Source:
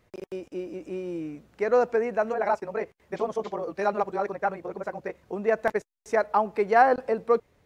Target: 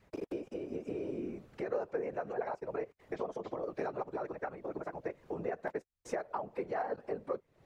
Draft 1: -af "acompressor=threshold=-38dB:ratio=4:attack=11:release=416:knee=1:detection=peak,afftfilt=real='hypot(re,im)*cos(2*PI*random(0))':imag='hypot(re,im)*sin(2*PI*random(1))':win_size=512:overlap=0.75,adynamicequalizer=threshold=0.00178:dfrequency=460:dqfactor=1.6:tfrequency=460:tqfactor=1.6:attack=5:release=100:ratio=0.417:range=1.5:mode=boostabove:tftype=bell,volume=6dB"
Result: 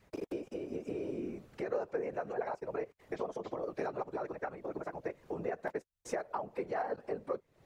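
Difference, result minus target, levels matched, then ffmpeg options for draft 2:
8,000 Hz band +3.5 dB
-af "acompressor=threshold=-38dB:ratio=4:attack=11:release=416:knee=1:detection=peak,highshelf=frequency=4800:gain=-5.5,afftfilt=real='hypot(re,im)*cos(2*PI*random(0))':imag='hypot(re,im)*sin(2*PI*random(1))':win_size=512:overlap=0.75,adynamicequalizer=threshold=0.00178:dfrequency=460:dqfactor=1.6:tfrequency=460:tqfactor=1.6:attack=5:release=100:ratio=0.417:range=1.5:mode=boostabove:tftype=bell,volume=6dB"

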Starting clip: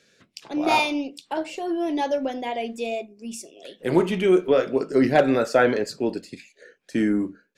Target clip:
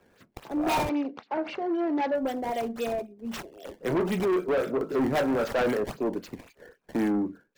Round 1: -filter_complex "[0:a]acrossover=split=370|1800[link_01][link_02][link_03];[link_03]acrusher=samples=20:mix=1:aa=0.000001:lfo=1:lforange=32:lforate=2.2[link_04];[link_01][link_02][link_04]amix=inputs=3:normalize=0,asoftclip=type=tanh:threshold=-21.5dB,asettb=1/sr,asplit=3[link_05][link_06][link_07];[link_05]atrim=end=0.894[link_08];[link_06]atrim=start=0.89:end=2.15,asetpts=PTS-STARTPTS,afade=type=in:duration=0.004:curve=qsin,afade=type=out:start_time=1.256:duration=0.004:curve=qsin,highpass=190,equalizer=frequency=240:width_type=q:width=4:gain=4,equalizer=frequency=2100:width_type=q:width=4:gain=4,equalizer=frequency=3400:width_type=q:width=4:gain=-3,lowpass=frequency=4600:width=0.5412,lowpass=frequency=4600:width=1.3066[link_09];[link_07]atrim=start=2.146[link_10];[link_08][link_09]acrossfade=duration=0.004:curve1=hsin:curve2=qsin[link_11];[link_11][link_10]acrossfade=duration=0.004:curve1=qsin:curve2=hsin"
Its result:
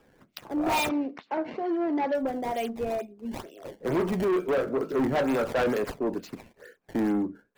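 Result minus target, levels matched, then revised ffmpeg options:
sample-and-hold swept by an LFO: distortion −5 dB
-filter_complex "[0:a]acrossover=split=370|1800[link_01][link_02][link_03];[link_03]acrusher=samples=20:mix=1:aa=0.000001:lfo=1:lforange=32:lforate=3.8[link_04];[link_01][link_02][link_04]amix=inputs=3:normalize=0,asoftclip=type=tanh:threshold=-21.5dB,asettb=1/sr,asplit=3[link_05][link_06][link_07];[link_05]atrim=end=0.894[link_08];[link_06]atrim=start=0.89:end=2.15,asetpts=PTS-STARTPTS,afade=type=in:duration=0.004:curve=qsin,afade=type=out:start_time=1.256:duration=0.004:curve=qsin,highpass=190,equalizer=frequency=240:width_type=q:width=4:gain=4,equalizer=frequency=2100:width_type=q:width=4:gain=4,equalizer=frequency=3400:width_type=q:width=4:gain=-3,lowpass=frequency=4600:width=0.5412,lowpass=frequency=4600:width=1.3066[link_09];[link_07]atrim=start=2.146[link_10];[link_08][link_09]acrossfade=duration=0.004:curve1=hsin:curve2=qsin[link_11];[link_11][link_10]acrossfade=duration=0.004:curve1=qsin:curve2=hsin"

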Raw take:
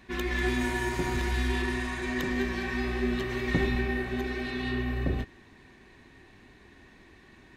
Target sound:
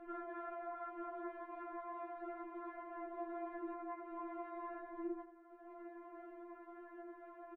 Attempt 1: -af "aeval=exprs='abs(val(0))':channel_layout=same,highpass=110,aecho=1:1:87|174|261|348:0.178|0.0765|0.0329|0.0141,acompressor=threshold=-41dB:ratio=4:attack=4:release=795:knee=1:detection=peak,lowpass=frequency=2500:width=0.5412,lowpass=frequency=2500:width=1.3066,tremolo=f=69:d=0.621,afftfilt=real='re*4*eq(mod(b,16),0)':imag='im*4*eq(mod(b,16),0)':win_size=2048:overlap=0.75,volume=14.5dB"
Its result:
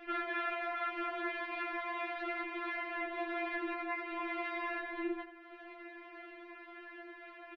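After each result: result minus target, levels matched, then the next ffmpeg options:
2,000 Hz band +9.5 dB; downward compressor: peak gain reduction −5.5 dB
-af "aeval=exprs='abs(val(0))':channel_layout=same,highpass=110,aecho=1:1:87|174|261|348:0.178|0.0765|0.0329|0.0141,acompressor=threshold=-41dB:ratio=4:attack=4:release=795:knee=1:detection=peak,lowpass=frequency=1200:width=0.5412,lowpass=frequency=1200:width=1.3066,tremolo=f=69:d=0.621,afftfilt=real='re*4*eq(mod(b,16),0)':imag='im*4*eq(mod(b,16),0)':win_size=2048:overlap=0.75,volume=14.5dB"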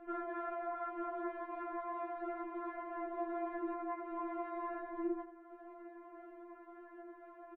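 downward compressor: peak gain reduction −5.5 dB
-af "aeval=exprs='abs(val(0))':channel_layout=same,highpass=110,aecho=1:1:87|174|261|348:0.178|0.0765|0.0329|0.0141,acompressor=threshold=-48dB:ratio=4:attack=4:release=795:knee=1:detection=peak,lowpass=frequency=1200:width=0.5412,lowpass=frequency=1200:width=1.3066,tremolo=f=69:d=0.621,afftfilt=real='re*4*eq(mod(b,16),0)':imag='im*4*eq(mod(b,16),0)':win_size=2048:overlap=0.75,volume=14.5dB"

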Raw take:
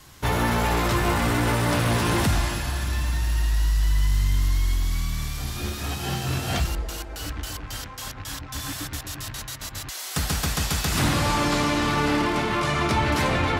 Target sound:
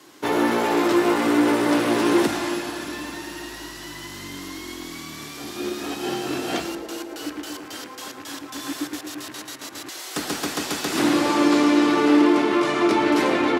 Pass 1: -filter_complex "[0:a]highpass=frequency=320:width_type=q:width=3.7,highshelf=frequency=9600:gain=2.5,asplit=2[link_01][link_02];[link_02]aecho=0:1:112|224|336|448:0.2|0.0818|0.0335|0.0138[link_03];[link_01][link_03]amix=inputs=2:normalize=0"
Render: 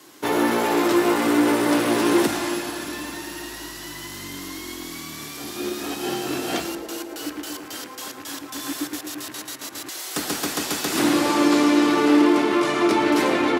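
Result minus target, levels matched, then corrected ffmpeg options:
8,000 Hz band +3.5 dB
-filter_complex "[0:a]highpass=frequency=320:width_type=q:width=3.7,highshelf=frequency=9600:gain=-6.5,asplit=2[link_01][link_02];[link_02]aecho=0:1:112|224|336|448:0.2|0.0818|0.0335|0.0138[link_03];[link_01][link_03]amix=inputs=2:normalize=0"

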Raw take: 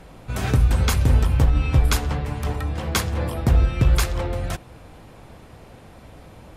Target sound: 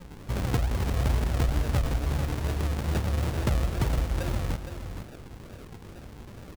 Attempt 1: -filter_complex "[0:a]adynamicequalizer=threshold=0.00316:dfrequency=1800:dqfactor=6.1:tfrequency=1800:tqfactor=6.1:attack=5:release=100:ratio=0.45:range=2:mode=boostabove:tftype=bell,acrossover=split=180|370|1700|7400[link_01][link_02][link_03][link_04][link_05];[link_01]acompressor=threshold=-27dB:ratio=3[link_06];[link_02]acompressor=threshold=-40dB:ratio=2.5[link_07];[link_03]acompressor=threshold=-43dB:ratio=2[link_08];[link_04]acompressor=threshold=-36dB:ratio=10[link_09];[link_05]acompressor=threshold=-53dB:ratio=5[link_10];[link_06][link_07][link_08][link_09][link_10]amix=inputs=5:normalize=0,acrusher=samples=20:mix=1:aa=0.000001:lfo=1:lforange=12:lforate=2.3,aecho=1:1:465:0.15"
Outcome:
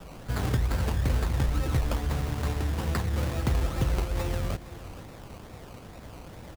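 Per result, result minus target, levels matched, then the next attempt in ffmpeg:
echo-to-direct −7.5 dB; sample-and-hold swept by an LFO: distortion −5 dB
-filter_complex "[0:a]adynamicequalizer=threshold=0.00316:dfrequency=1800:dqfactor=6.1:tfrequency=1800:tqfactor=6.1:attack=5:release=100:ratio=0.45:range=2:mode=boostabove:tftype=bell,acrossover=split=180|370|1700|7400[link_01][link_02][link_03][link_04][link_05];[link_01]acompressor=threshold=-27dB:ratio=3[link_06];[link_02]acompressor=threshold=-40dB:ratio=2.5[link_07];[link_03]acompressor=threshold=-43dB:ratio=2[link_08];[link_04]acompressor=threshold=-36dB:ratio=10[link_09];[link_05]acompressor=threshold=-53dB:ratio=5[link_10];[link_06][link_07][link_08][link_09][link_10]amix=inputs=5:normalize=0,acrusher=samples=20:mix=1:aa=0.000001:lfo=1:lforange=12:lforate=2.3,aecho=1:1:465:0.355"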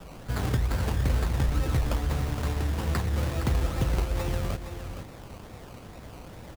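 sample-and-hold swept by an LFO: distortion −5 dB
-filter_complex "[0:a]adynamicequalizer=threshold=0.00316:dfrequency=1800:dqfactor=6.1:tfrequency=1800:tqfactor=6.1:attack=5:release=100:ratio=0.45:range=2:mode=boostabove:tftype=bell,acrossover=split=180|370|1700|7400[link_01][link_02][link_03][link_04][link_05];[link_01]acompressor=threshold=-27dB:ratio=3[link_06];[link_02]acompressor=threshold=-40dB:ratio=2.5[link_07];[link_03]acompressor=threshold=-43dB:ratio=2[link_08];[link_04]acompressor=threshold=-36dB:ratio=10[link_09];[link_05]acompressor=threshold=-53dB:ratio=5[link_10];[link_06][link_07][link_08][link_09][link_10]amix=inputs=5:normalize=0,acrusher=samples=58:mix=1:aa=0.000001:lfo=1:lforange=34.8:lforate=2.3,aecho=1:1:465:0.355"

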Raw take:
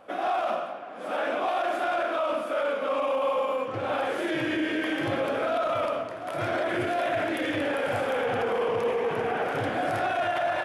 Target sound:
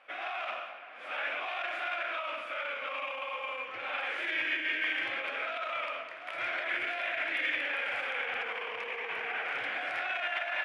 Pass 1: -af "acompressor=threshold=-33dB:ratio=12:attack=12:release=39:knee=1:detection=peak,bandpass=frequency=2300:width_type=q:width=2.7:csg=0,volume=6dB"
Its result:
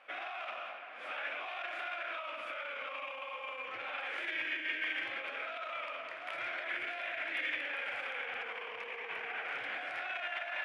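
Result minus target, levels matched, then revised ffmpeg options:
downward compressor: peak gain reduction +5.5 dB
-af "acompressor=threshold=-27dB:ratio=12:attack=12:release=39:knee=1:detection=peak,bandpass=frequency=2300:width_type=q:width=2.7:csg=0,volume=6dB"

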